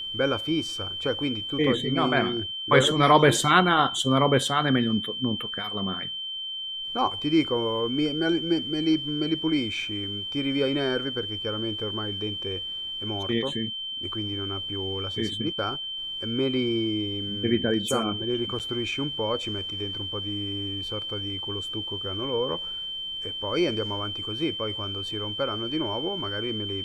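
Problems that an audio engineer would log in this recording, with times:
whine 3.1 kHz -31 dBFS
18.59–18.60 s: dropout 7.8 ms

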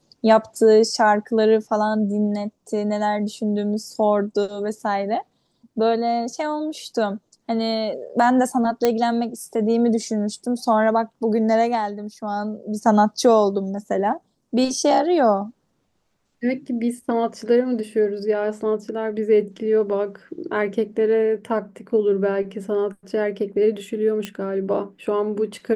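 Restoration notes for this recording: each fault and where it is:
8.85 s: pop -5 dBFS
24.25 s: pop -13 dBFS

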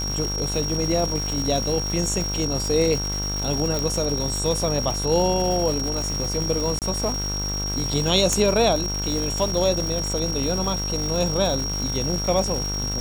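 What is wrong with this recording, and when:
buzz 50 Hz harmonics 32 -29 dBFS
crackle 540 per s -27 dBFS
whine 5.6 kHz -27 dBFS
3.79 s: pop -11 dBFS
6.79–6.82 s: dropout 28 ms
8.33 s: pop -7 dBFS

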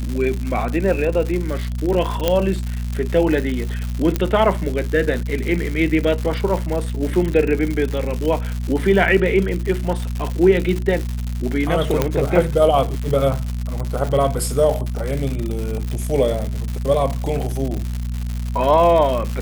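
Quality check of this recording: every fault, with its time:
crackle 190 per s -23 dBFS
hum 60 Hz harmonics 4 -24 dBFS
2.28 s: pop -3 dBFS
4.16 s: pop -6 dBFS
12.02 s: pop -3 dBFS

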